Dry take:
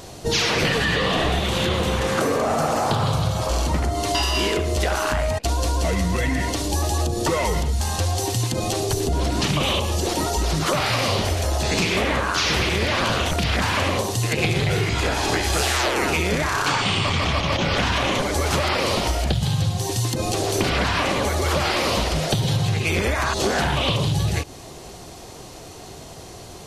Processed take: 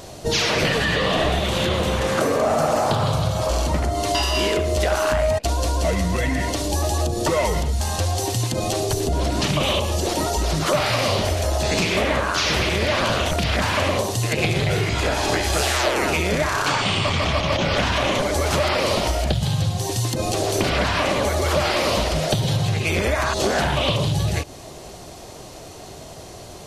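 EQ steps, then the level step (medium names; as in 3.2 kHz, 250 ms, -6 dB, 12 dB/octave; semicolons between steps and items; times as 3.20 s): peaking EQ 610 Hz +6.5 dB 0.22 oct; 0.0 dB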